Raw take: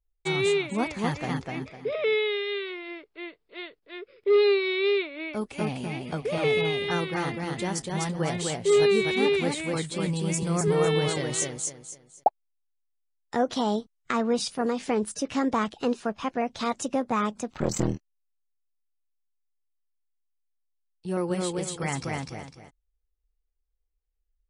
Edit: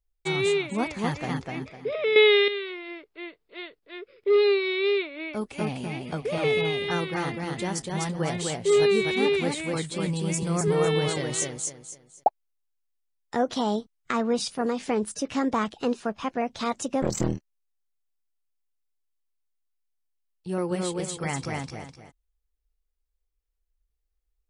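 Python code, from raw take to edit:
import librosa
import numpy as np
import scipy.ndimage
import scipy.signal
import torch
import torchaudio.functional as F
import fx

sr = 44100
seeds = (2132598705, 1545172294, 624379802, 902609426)

y = fx.edit(x, sr, fx.clip_gain(start_s=2.16, length_s=0.32, db=10.0),
    fx.cut(start_s=17.02, length_s=0.59), tone=tone)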